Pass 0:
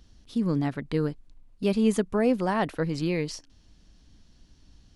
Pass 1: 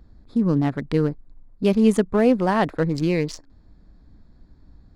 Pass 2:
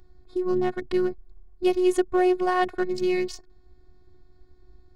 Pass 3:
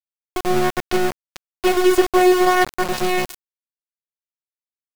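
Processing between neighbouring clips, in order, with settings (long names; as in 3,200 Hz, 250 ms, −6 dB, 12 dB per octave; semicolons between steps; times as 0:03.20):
adaptive Wiener filter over 15 samples; level +6 dB
phases set to zero 363 Hz
delay that plays each chunk backwards 232 ms, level −10.5 dB; mains-hum notches 60/120/180/240/300/360/420/480 Hz; centre clipping without the shift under −24 dBFS; level +7.5 dB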